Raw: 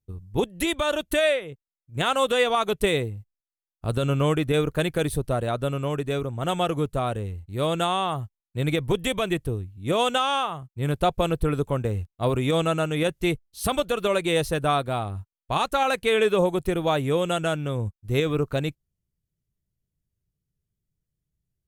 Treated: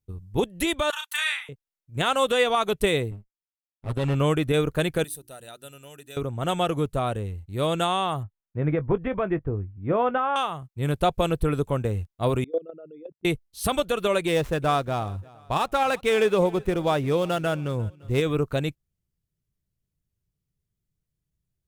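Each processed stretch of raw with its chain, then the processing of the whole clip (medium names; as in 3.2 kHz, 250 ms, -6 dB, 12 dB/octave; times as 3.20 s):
0.90–1.49 s: de-esser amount 45% + steep high-pass 850 Hz 72 dB/octave + doubling 34 ms -4.5 dB
3.11–4.15 s: comb filter that takes the minimum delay 7.6 ms + treble shelf 4.2 kHz -7.5 dB + transient shaper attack -5 dB, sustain -10 dB
5.04–6.17 s: pre-emphasis filter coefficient 0.9 + hum notches 60/120/180/240/300/360 Hz + comb of notches 1.1 kHz
8.23–10.36 s: low-pass 1.8 kHz 24 dB/octave + doubling 20 ms -13.5 dB
12.44–13.25 s: resonances exaggerated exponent 3 + level held to a coarse grid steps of 21 dB + high-pass 290 Hz
14.27–18.22 s: median filter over 9 samples + feedback delay 352 ms, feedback 35%, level -23 dB
whole clip: none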